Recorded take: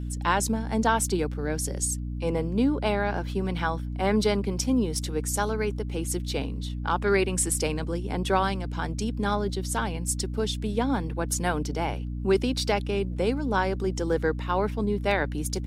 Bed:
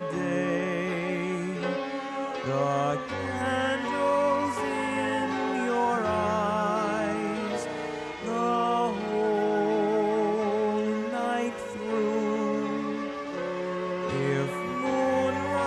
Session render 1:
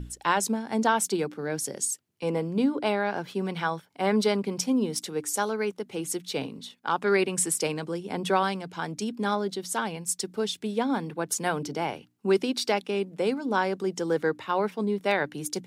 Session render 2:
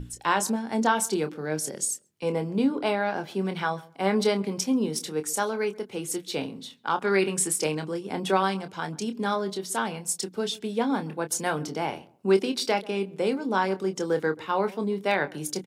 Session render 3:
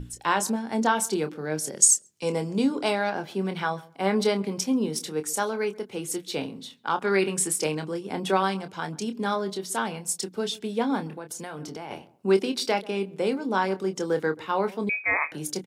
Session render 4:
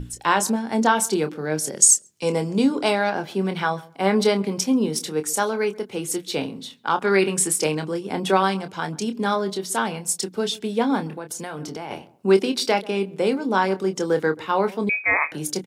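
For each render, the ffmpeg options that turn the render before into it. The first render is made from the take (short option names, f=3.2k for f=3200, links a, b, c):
-af "bandreject=f=60:t=h:w=6,bandreject=f=120:t=h:w=6,bandreject=f=180:t=h:w=6,bandreject=f=240:t=h:w=6,bandreject=f=300:t=h:w=6"
-filter_complex "[0:a]asplit=2[a][b];[b]adelay=26,volume=-9dB[c];[a][c]amix=inputs=2:normalize=0,asplit=2[d][e];[e]adelay=134,lowpass=f=880:p=1,volume=-19dB,asplit=2[f][g];[g]adelay=134,lowpass=f=880:p=1,volume=0.26[h];[d][f][h]amix=inputs=3:normalize=0"
-filter_complex "[0:a]asettb=1/sr,asplit=3[a][b][c];[a]atrim=end=1.824[d];[b]atrim=start=1.82:end=3.1,asetpts=PTS-STARTPTS,afade=t=in:d=0.004:c=qsin,afade=t=out:st=1.276:d=0.004:c=qsin,equalizer=f=6.8k:w=1:g=13.5[e];[c]atrim=start=3.096[f];[d][e]acrossfade=d=0.004:c1=hsin:c2=qsin[g];[g][f]acrossfade=d=0.004:c1=qsin:c2=hsin,asettb=1/sr,asplit=3[h][i][j];[h]atrim=end=11.074[k];[i]atrim=start=11.07:end=11.91,asetpts=PTS-STARTPTS,afade=t=in:d=0.004:c=qsin,afade=t=out:st=0.836:d=0.004:c=qsin,acompressor=threshold=-33dB:ratio=6:attack=3.2:release=140:knee=1:detection=peak[l];[j]atrim=start=11.906[m];[k][l]acrossfade=d=0.004:c1=hsin:c2=qsin[n];[n][m]acrossfade=d=0.004:c1=qsin:c2=hsin,asettb=1/sr,asplit=3[o][p][q];[o]atrim=end=14.894[r];[p]atrim=start=14.89:end=15.32,asetpts=PTS-STARTPTS,afade=t=in:d=0.004:c=qsin,afade=t=out:st=0.426:d=0.004:c=qsin,lowpass=f=2.3k:t=q:w=0.5098,lowpass=f=2.3k:t=q:w=0.6013,lowpass=f=2.3k:t=q:w=0.9,lowpass=f=2.3k:t=q:w=2.563,afreqshift=-2700[s];[q]atrim=start=15.316[t];[r][s]acrossfade=d=0.004:c1=hsin:c2=qsin[u];[u][t]acrossfade=d=0.004:c1=qsin:c2=hsin"
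-af "volume=4.5dB,alimiter=limit=-3dB:level=0:latency=1"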